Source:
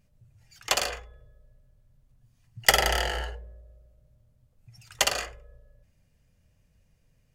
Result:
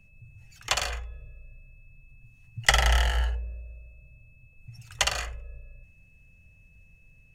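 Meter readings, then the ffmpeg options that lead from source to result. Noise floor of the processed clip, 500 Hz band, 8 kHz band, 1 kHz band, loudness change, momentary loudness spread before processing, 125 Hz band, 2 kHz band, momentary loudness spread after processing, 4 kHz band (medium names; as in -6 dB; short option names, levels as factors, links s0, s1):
-57 dBFS, -5.0 dB, -2.5 dB, -1.5 dB, -1.0 dB, 20 LU, +8.5 dB, 0.0 dB, 22 LU, -1.0 dB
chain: -filter_complex "[0:a]bandreject=f=4800:w=12,acrossover=split=8500[s0][s1];[s1]acompressor=threshold=0.00891:ratio=4:attack=1:release=60[s2];[s0][s2]amix=inputs=2:normalize=0,lowshelf=f=170:g=10.5,acrossover=split=170|620|3600[s3][s4][s5][s6];[s4]acompressor=threshold=0.00251:ratio=6[s7];[s3][s7][s5][s6]amix=inputs=4:normalize=0,aeval=exprs='val(0)+0.001*sin(2*PI*2600*n/s)':c=same"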